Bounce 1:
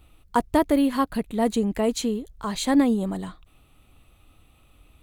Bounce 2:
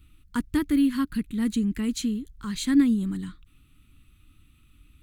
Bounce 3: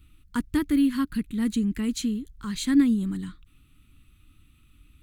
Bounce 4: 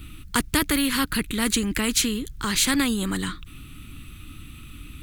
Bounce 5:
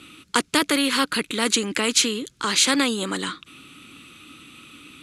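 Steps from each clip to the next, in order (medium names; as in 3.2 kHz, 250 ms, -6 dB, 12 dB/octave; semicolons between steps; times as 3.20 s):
FFT filter 290 Hz 0 dB, 660 Hz -29 dB, 1.4 kHz -3 dB
no audible change
spectrum-flattening compressor 2:1; trim +4.5 dB
cabinet simulation 320–9600 Hz, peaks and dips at 530 Hz +5 dB, 1.8 kHz -4 dB, 8.6 kHz -4 dB; trim +4.5 dB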